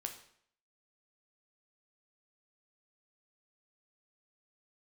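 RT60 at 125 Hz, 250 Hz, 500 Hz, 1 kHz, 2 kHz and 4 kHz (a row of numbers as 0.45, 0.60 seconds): 0.65, 0.60, 0.65, 0.65, 0.60, 0.55 seconds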